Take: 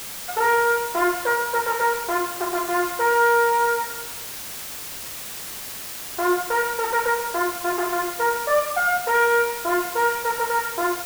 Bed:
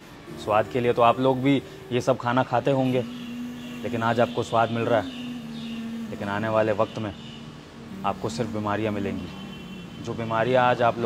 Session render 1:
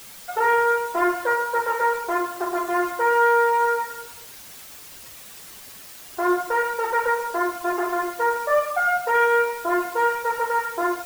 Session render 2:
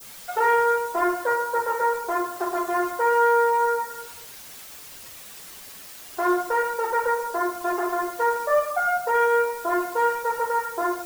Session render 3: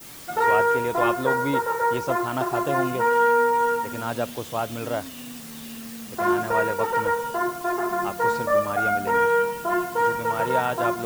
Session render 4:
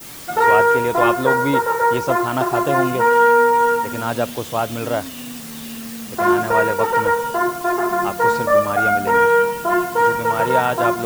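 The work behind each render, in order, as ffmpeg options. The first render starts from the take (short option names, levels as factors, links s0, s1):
-af "afftdn=nr=9:nf=-34"
-af "bandreject=f=50:t=h:w=6,bandreject=f=100:t=h:w=6,bandreject=f=150:t=h:w=6,bandreject=f=200:t=h:w=6,bandreject=f=250:t=h:w=6,bandreject=f=300:t=h:w=6,bandreject=f=350:t=h:w=6,adynamicequalizer=threshold=0.0126:dfrequency=2500:dqfactor=0.89:tfrequency=2500:tqfactor=0.89:attack=5:release=100:ratio=0.375:range=3.5:mode=cutabove:tftype=bell"
-filter_complex "[1:a]volume=0.501[s0];[0:a][s0]amix=inputs=2:normalize=0"
-af "volume=2"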